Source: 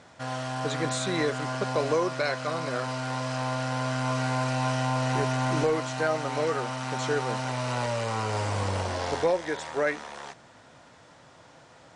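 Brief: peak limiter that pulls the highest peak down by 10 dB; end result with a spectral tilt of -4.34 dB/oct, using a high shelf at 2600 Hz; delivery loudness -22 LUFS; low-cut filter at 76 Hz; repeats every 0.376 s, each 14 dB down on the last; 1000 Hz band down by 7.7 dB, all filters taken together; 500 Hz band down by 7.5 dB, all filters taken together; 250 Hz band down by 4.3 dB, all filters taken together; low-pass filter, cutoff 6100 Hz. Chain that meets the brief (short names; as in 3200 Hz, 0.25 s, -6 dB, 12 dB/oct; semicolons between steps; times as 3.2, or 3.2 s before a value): HPF 76 Hz; LPF 6100 Hz; bell 250 Hz -3 dB; bell 500 Hz -6 dB; bell 1000 Hz -8.5 dB; high shelf 2600 Hz +3 dB; limiter -27.5 dBFS; feedback echo 0.376 s, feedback 20%, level -14 dB; gain +14.5 dB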